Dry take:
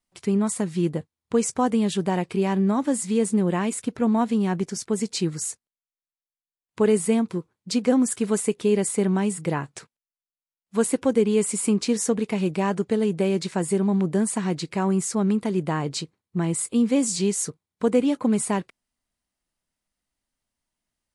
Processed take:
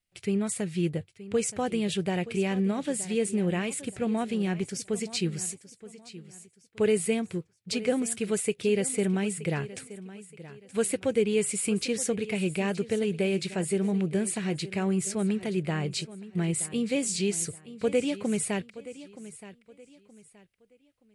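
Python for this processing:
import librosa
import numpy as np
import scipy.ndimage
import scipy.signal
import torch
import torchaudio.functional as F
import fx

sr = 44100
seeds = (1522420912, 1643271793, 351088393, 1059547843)

p1 = fx.graphic_eq_15(x, sr, hz=(100, 250, 1000, 2500, 6300), db=(7, -8, -12, 6, -3))
p2 = p1 + fx.echo_feedback(p1, sr, ms=923, feedback_pct=31, wet_db=-16.0, dry=0)
y = F.gain(torch.from_numpy(p2), -2.0).numpy()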